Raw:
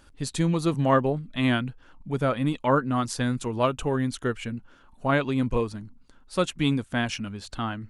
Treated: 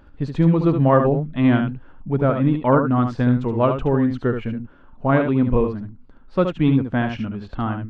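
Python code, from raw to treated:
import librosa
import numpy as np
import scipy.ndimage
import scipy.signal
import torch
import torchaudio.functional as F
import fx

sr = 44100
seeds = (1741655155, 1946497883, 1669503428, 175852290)

p1 = fx.spacing_loss(x, sr, db_at_10k=45)
p2 = p1 + fx.echo_single(p1, sr, ms=73, db=-7.0, dry=0)
y = p2 * 10.0 ** (8.0 / 20.0)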